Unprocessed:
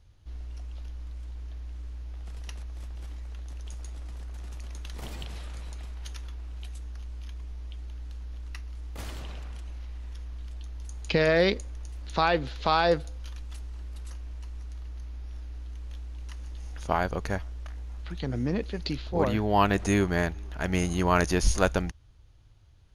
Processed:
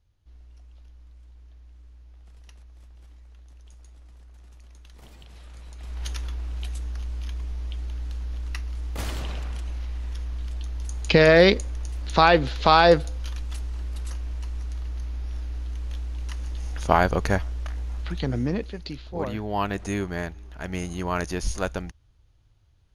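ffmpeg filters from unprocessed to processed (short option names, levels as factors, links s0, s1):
-af "volume=2.37,afade=t=in:st=5.23:d=0.55:silence=0.421697,afade=t=in:st=5.78:d=0.25:silence=0.316228,afade=t=out:st=17.98:d=0.85:silence=0.266073"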